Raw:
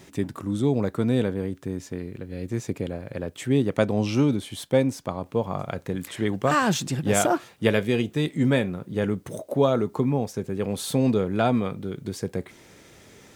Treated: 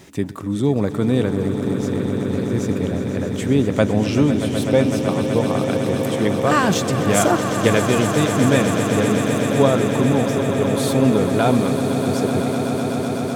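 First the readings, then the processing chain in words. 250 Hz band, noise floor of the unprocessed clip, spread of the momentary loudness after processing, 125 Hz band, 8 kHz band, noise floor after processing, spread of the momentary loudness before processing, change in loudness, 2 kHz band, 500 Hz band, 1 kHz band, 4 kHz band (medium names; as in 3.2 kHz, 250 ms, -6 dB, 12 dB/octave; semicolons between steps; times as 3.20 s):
+7.5 dB, -52 dBFS, 6 LU, +6.5 dB, +7.0 dB, -25 dBFS, 11 LU, +7.0 dB, +7.0 dB, +7.0 dB, +7.0 dB, +7.0 dB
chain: echo with a slow build-up 126 ms, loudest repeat 8, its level -11.5 dB; trim +4 dB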